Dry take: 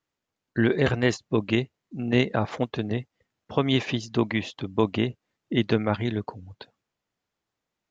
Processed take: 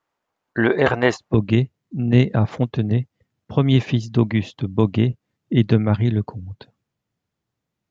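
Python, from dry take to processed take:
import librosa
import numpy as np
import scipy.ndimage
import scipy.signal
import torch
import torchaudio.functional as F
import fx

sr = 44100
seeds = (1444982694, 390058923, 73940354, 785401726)

y = fx.peak_eq(x, sr, hz=fx.steps((0.0, 910.0), (1.34, 120.0)), db=13.0, octaves=2.3)
y = y * librosa.db_to_amplitude(-1.0)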